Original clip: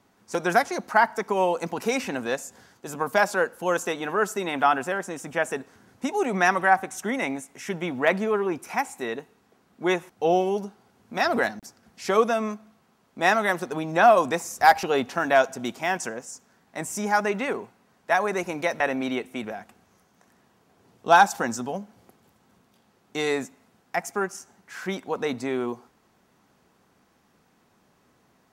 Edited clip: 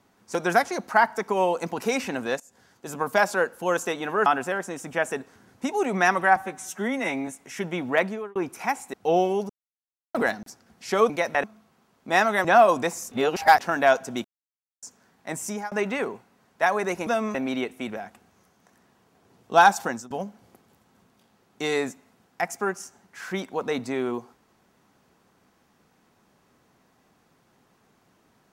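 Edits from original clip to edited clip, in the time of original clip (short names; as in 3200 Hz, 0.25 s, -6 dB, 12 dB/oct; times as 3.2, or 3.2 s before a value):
2.4–2.88 fade in, from -20 dB
4.26–4.66 cut
6.76–7.37 stretch 1.5×
8.04–8.45 fade out
9.03–10.1 cut
10.66–11.31 mute
12.26–12.54 swap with 18.55–18.89
13.55–13.93 cut
14.6–15.08 reverse
15.73–16.31 mute
16.86–17.2 fade out equal-power
21.38–21.65 fade out, to -20.5 dB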